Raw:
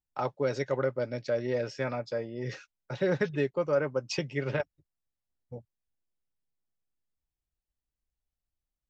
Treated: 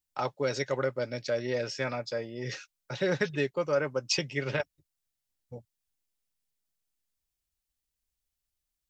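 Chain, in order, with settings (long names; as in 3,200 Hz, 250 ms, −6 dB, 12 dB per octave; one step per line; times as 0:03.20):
high-shelf EQ 2,200 Hz +11 dB
level −1.5 dB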